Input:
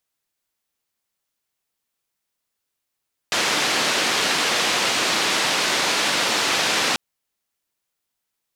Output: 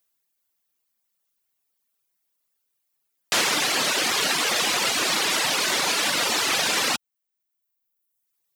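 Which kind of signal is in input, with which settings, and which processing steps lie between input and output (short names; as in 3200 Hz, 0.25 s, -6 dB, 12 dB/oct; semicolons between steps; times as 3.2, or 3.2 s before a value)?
noise band 210–4500 Hz, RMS -21 dBFS 3.64 s
HPF 83 Hz; reverb removal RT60 1.2 s; high shelf 11000 Hz +11 dB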